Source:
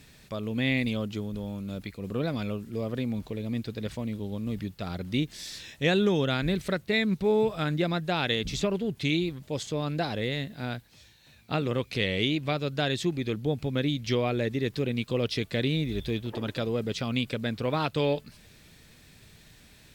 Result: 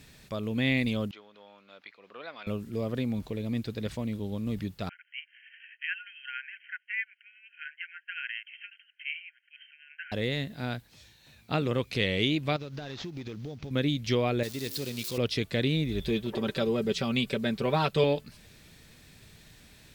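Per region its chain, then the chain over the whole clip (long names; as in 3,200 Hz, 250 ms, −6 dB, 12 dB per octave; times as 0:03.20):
0:01.11–0:02.47: high-pass filter 1,000 Hz + high-frequency loss of the air 270 metres
0:04.89–0:10.12: linear-phase brick-wall band-pass 1,400–3,200 Hz + shaped tremolo triangle 11 Hz, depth 55%
0:12.56–0:13.71: variable-slope delta modulation 32 kbit/s + downward compressor 12 to 1, threshold −34 dBFS + log-companded quantiser 8 bits
0:14.43–0:15.18: spike at every zero crossing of −24 dBFS + parametric band 4,600 Hz +9.5 dB 1 octave + tuned comb filter 54 Hz, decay 1.9 s, harmonics odd
0:16.00–0:18.04: parametric band 450 Hz +5.5 dB 0.21 octaves + comb filter 5.2 ms, depth 63%
whole clip: no processing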